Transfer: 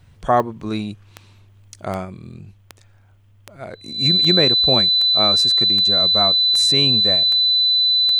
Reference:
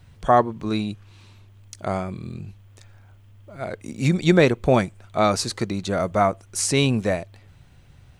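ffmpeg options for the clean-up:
ffmpeg -i in.wav -af "adeclick=threshold=4,bandreject=frequency=4000:width=30,asetnsamples=nb_out_samples=441:pad=0,asendcmd='2.05 volume volume 3dB',volume=0dB" out.wav

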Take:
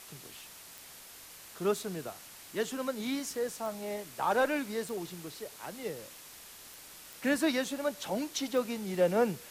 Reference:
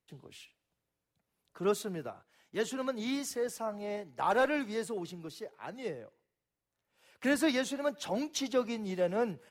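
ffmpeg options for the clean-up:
ffmpeg -i in.wav -af "adeclick=threshold=4,afwtdn=0.0035,asetnsamples=nb_out_samples=441:pad=0,asendcmd='8.94 volume volume -4dB',volume=0dB" out.wav

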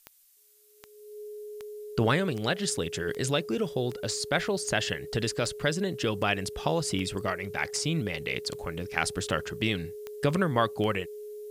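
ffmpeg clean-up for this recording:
ffmpeg -i in.wav -af "adeclick=threshold=4,bandreject=frequency=420:width=30,agate=range=-21dB:threshold=-35dB" out.wav

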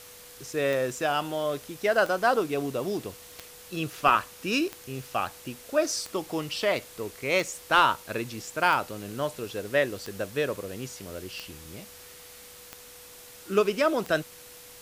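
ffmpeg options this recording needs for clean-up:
ffmpeg -i in.wav -af "adeclick=threshold=4,bandreject=frequency=490:width=30,afwtdn=0.0045" out.wav

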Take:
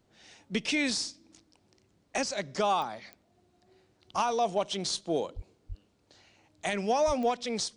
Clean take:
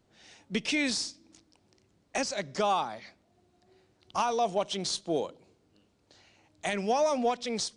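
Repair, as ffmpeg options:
ffmpeg -i in.wav -filter_complex "[0:a]adeclick=threshold=4,asplit=3[link_01][link_02][link_03];[link_01]afade=type=out:start_time=5.35:duration=0.02[link_04];[link_02]highpass=frequency=140:width=0.5412,highpass=frequency=140:width=1.3066,afade=type=in:start_time=5.35:duration=0.02,afade=type=out:start_time=5.47:duration=0.02[link_05];[link_03]afade=type=in:start_time=5.47:duration=0.02[link_06];[link_04][link_05][link_06]amix=inputs=3:normalize=0,asplit=3[link_07][link_08][link_09];[link_07]afade=type=out:start_time=5.68:duration=0.02[link_10];[link_08]highpass=frequency=140:width=0.5412,highpass=frequency=140:width=1.3066,afade=type=in:start_time=5.68:duration=0.02,afade=type=out:start_time=5.8:duration=0.02[link_11];[link_09]afade=type=in:start_time=5.8:duration=0.02[link_12];[link_10][link_11][link_12]amix=inputs=3:normalize=0,asplit=3[link_13][link_14][link_15];[link_13]afade=type=out:start_time=7.06:duration=0.02[link_16];[link_14]highpass=frequency=140:width=0.5412,highpass=frequency=140:width=1.3066,afade=type=in:start_time=7.06:duration=0.02,afade=type=out:start_time=7.18:duration=0.02[link_17];[link_15]afade=type=in:start_time=7.18:duration=0.02[link_18];[link_16][link_17][link_18]amix=inputs=3:normalize=0" out.wav

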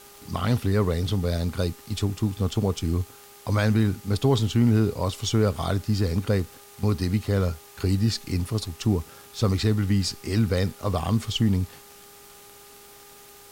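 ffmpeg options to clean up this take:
ffmpeg -i in.wav -af "adeclick=threshold=4,bandreject=frequency=405.7:width_type=h:width=4,bandreject=frequency=811.4:width_type=h:width=4,bandreject=frequency=1217.1:width_type=h:width=4,afwtdn=0.0035" out.wav

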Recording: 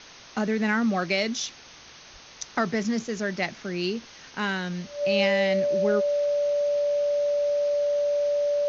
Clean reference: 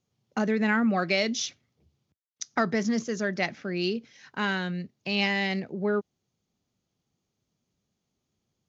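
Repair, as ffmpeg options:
ffmpeg -i in.wav -filter_complex "[0:a]bandreject=frequency=580:width=30,asplit=3[link_01][link_02][link_03];[link_01]afade=type=out:start_time=2.12:duration=0.02[link_04];[link_02]highpass=frequency=140:width=0.5412,highpass=frequency=140:width=1.3066,afade=type=in:start_time=2.12:duration=0.02,afade=type=out:start_time=2.24:duration=0.02[link_05];[link_03]afade=type=in:start_time=2.24:duration=0.02[link_06];[link_04][link_05][link_06]amix=inputs=3:normalize=0,afwtdn=0.0071" out.wav

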